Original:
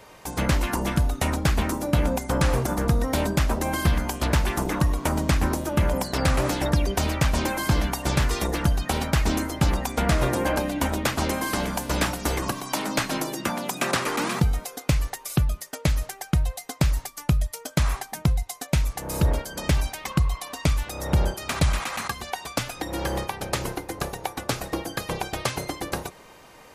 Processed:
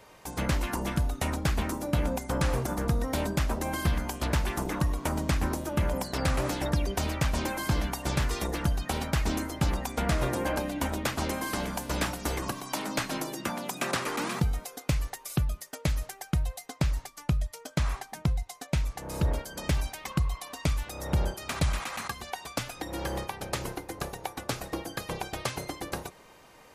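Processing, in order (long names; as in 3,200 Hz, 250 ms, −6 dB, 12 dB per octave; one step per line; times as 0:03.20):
0:16.66–0:19.33: high-shelf EQ 10,000 Hz −9.5 dB
level −5.5 dB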